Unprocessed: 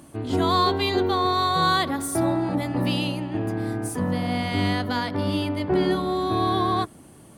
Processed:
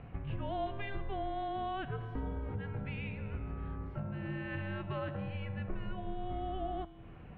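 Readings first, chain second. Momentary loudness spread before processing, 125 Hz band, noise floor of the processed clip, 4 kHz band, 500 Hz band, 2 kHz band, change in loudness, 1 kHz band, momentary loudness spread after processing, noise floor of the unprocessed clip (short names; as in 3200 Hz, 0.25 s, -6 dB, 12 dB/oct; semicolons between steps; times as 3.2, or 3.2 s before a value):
7 LU, -11.0 dB, -51 dBFS, -25.0 dB, -16.0 dB, -14.5 dB, -16.0 dB, -17.0 dB, 4 LU, -48 dBFS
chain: compressor 6:1, threshold -36 dBFS, peak gain reduction 17.5 dB; resonator 120 Hz, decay 1.9 s, mix 70%; mistuned SSB -390 Hz 210–3000 Hz; gain +11 dB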